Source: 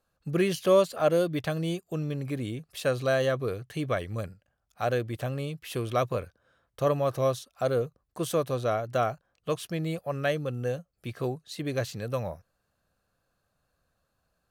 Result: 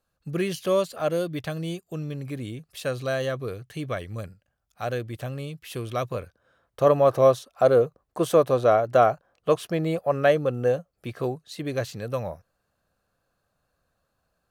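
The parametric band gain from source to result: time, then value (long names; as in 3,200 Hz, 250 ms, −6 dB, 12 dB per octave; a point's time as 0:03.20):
parametric band 650 Hz 3 octaves
0:06.04 −2 dB
0:07.06 +9.5 dB
0:10.70 +9.5 dB
0:11.42 +2.5 dB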